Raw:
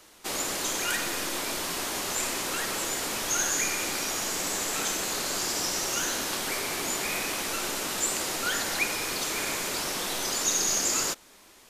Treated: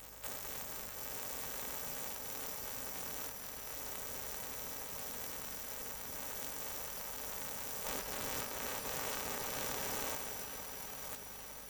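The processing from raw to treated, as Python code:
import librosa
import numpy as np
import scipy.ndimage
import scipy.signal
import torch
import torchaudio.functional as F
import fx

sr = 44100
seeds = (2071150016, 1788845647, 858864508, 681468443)

y = np.r_[np.sort(x[:len(x) // 128 * 128].reshape(-1, 128), axis=1).ravel(), x[len(x) // 128 * 128:]]
y = fx.spec_gate(y, sr, threshold_db=-25, keep='weak')
y = fx.high_shelf(y, sr, hz=6800.0, db=-6.0, at=(7.85, 10.16))
y = fx.over_compress(y, sr, threshold_db=-52.0, ratio=-1.0)
y = fx.add_hum(y, sr, base_hz=50, snr_db=19)
y = fx.echo_crushed(y, sr, ms=455, feedback_pct=80, bits=11, wet_db=-10.5)
y = y * librosa.db_to_amplitude(8.5)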